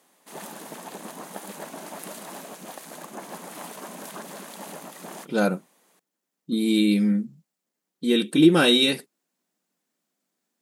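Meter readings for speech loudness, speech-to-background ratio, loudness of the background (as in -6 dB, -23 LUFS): -21.0 LUFS, 18.0 dB, -39.0 LUFS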